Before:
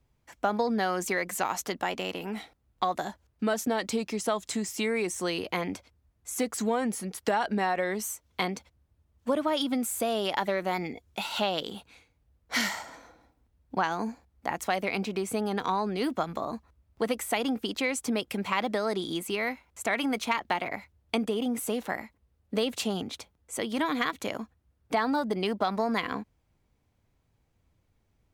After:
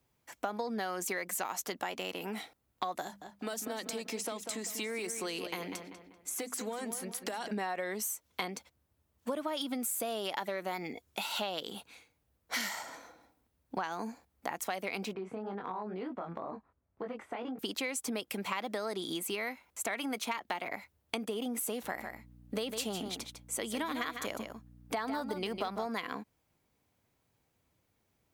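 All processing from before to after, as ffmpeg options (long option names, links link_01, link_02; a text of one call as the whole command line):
ffmpeg -i in.wav -filter_complex "[0:a]asettb=1/sr,asplit=3[link_01][link_02][link_03];[link_01]atrim=end=3.024[link_04];[link_02]atrim=start=3.02:end=7.51,asetpts=PTS-STARTPTS,afade=type=in:duration=0.004:curve=qsin,afade=type=out:start_time=4.486:duration=0.004:curve=qsin,acrossover=split=390|3600[link_05][link_06][link_07];[link_05]acompressor=threshold=-39dB:ratio=4[link_08];[link_06]acompressor=threshold=-37dB:ratio=4[link_09];[link_07]acompressor=threshold=-40dB:ratio=4[link_10];[link_08][link_09][link_10]amix=inputs=3:normalize=0,bandreject=frequency=50:width_type=h:width=6,bandreject=frequency=100:width_type=h:width=6,bandreject=frequency=150:width_type=h:width=6,bandreject=frequency=200:width_type=h:width=6,bandreject=frequency=250:width_type=h:width=6,asplit=2[link_11][link_12];[link_12]adelay=194,lowpass=frequency=3100:poles=1,volume=-8.5dB,asplit=2[link_13][link_14];[link_14]adelay=194,lowpass=frequency=3100:poles=1,volume=0.4,asplit=2[link_15][link_16];[link_16]adelay=194,lowpass=frequency=3100:poles=1,volume=0.4,asplit=2[link_17][link_18];[link_18]adelay=194,lowpass=frequency=3100:poles=1,volume=0.4[link_19];[link_11][link_13][link_15][link_17][link_19]amix=inputs=5:normalize=0,atrim=end_sample=198009[link_20];[link_03]atrim=start=7.506[link_21];[link_04][link_20]acrossfade=duration=0.004:curve1=hsin:curve2=qsin[link_22];[link_22][link_21]acrossfade=duration=0.004:curve1=qsin:curve2=hsin,asettb=1/sr,asplit=3[link_23][link_24][link_25];[link_23]atrim=end=15.134[link_26];[link_24]atrim=start=15.13:end=17.59,asetpts=PTS-STARTPTS,afade=type=in:duration=0.004:curve=qsin,afade=type=out:start_time=2.456:duration=0.004:curve=qsin,flanger=delay=19.5:depth=4.3:speed=2.1,lowpass=1600,acompressor=threshold=-33dB:ratio=4:attack=3.2:release=140:knee=1:detection=peak[link_27];[link_25]atrim=start=17.586[link_28];[link_26][link_27]acrossfade=duration=0.004:curve1=hsin:curve2=qsin[link_29];[link_29][link_28]acrossfade=duration=0.004:curve1=qsin:curve2=hsin,asettb=1/sr,asplit=3[link_30][link_31][link_32];[link_30]atrim=end=21.834[link_33];[link_31]atrim=start=21.83:end=25.87,asetpts=PTS-STARTPTS,afade=type=in:duration=0.004:curve=qsin,afade=type=out:start_time=4.036:duration=0.004:curve=qsin,aeval=exprs='val(0)+0.00447*(sin(2*PI*60*n/s)+sin(2*PI*2*60*n/s)/2+sin(2*PI*3*60*n/s)/3+sin(2*PI*4*60*n/s)/4+sin(2*PI*5*60*n/s)/5)':channel_layout=same,aecho=1:1:152:0.355,atrim=end_sample=178164[link_34];[link_32]atrim=start=25.866[link_35];[link_33][link_34]acrossfade=duration=0.004:curve1=hsin:curve2=qsin[link_36];[link_36][link_35]acrossfade=duration=0.004:curve1=qsin:curve2=hsin,highpass=frequency=230:poles=1,highshelf=frequency=9800:gain=9.5,acompressor=threshold=-34dB:ratio=3" out.wav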